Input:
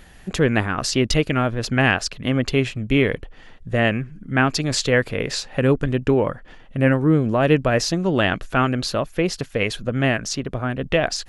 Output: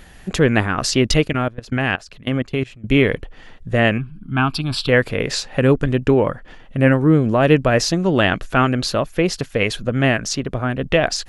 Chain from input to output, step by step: 1.27–2.84 s: level held to a coarse grid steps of 22 dB; 3.98–4.89 s: static phaser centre 1.9 kHz, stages 6; trim +3 dB

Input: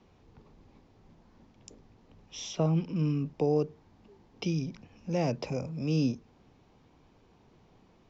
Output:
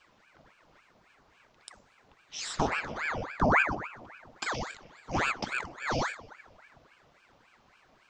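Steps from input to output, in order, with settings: Chebyshev high-pass 350 Hz, order 3; 2.47–4.74 s: frequency-shifting echo 123 ms, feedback 32%, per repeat +70 Hz, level -7 dB; reverberation RT60 1.9 s, pre-delay 7 ms, DRR 14 dB; ring modulator with a swept carrier 1.1 kHz, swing 85%, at 3.6 Hz; trim +6 dB

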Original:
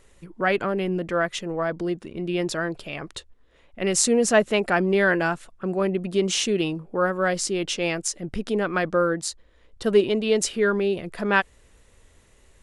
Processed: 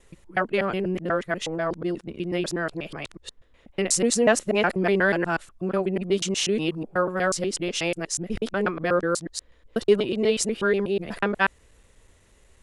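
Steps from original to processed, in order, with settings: time reversed locally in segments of 122 ms; trim -1 dB

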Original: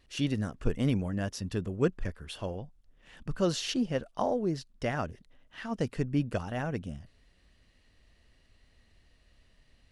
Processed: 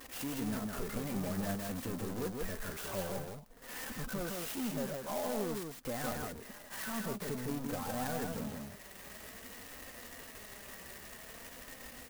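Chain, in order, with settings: treble shelf 2.2 kHz -2.5 dB; transient shaper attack +3 dB, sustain -5 dB; peak limiter -21.5 dBFS, peak gain reduction 10 dB; vibrato 0.31 Hz 14 cents; overdrive pedal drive 37 dB, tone 3.2 kHz, clips at -29 dBFS; tempo 0.82×; flange 0.51 Hz, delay 3.7 ms, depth 1.6 ms, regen +42%; delay 161 ms -3.5 dB; sampling jitter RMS 0.08 ms; trim -1.5 dB

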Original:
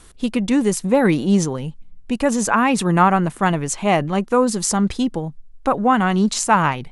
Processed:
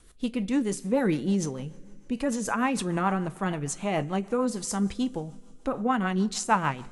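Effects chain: two-slope reverb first 0.33 s, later 3.1 s, from -18 dB, DRR 12 dB; rotary cabinet horn 6.7 Hz; trim -7.5 dB

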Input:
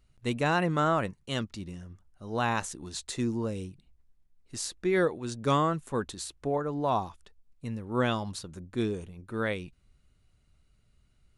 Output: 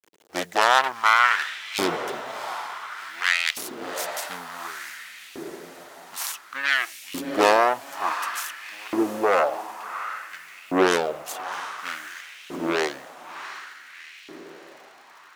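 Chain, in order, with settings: self-modulated delay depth 0.59 ms; speed mistake 45 rpm record played at 33 rpm; bit crusher 10-bit; on a send: echo that smears into a reverb 710 ms, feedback 58%, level -10.5 dB; on the sum: LFO high-pass saw up 0.56 Hz 320–2800 Hz; trim +6 dB

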